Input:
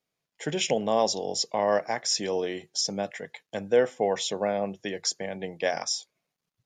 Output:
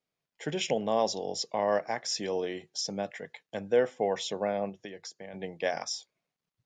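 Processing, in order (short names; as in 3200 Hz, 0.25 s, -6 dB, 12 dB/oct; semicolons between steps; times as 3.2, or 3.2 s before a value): 4.69–5.34 compressor 4:1, threshold -37 dBFS, peak gain reduction 12 dB; air absorption 55 m; gain -3 dB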